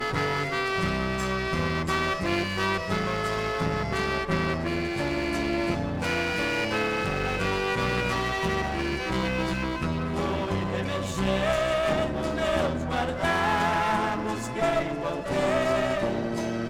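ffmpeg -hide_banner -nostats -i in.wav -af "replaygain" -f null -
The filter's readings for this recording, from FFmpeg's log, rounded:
track_gain = +9.2 dB
track_peak = 0.184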